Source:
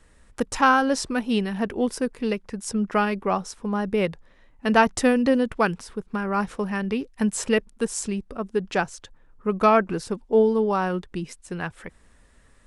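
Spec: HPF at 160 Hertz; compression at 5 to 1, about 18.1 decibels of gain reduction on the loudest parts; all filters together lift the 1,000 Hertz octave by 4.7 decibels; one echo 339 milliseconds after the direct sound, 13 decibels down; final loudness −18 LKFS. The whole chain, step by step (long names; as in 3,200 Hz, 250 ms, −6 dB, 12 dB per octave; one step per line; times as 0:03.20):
high-pass filter 160 Hz
parametric band 1,000 Hz +6 dB
downward compressor 5 to 1, threshold −30 dBFS
single-tap delay 339 ms −13 dB
level +16 dB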